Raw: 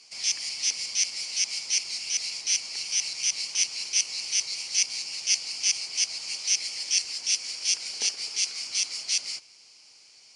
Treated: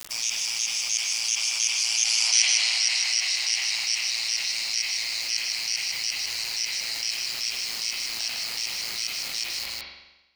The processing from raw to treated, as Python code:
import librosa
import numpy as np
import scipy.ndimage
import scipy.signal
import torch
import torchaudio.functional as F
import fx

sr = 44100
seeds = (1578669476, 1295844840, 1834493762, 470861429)

y = fx.doppler_pass(x, sr, speed_mps=21, closest_m=2.7, pass_at_s=2.34)
y = scipy.signal.sosfilt(scipy.signal.ellip(4, 1.0, 50, 700.0, 'highpass', fs=sr, output='sos'), y)
y = fx.quant_dither(y, sr, seeds[0], bits=12, dither='none')
y = y * np.sin(2.0 * np.pi * 57.0 * np.arange(len(y)) / sr)
y = y + 10.0 ** (-8.0 / 20.0) * np.pad(y, (int(154 * sr / 1000.0), 0))[:len(y)]
y = fx.rev_spring(y, sr, rt60_s=1.0, pass_ms=(42,), chirp_ms=65, drr_db=1.5)
y = fx.env_flatten(y, sr, amount_pct=70)
y = F.gain(torch.from_numpy(y), 7.5).numpy()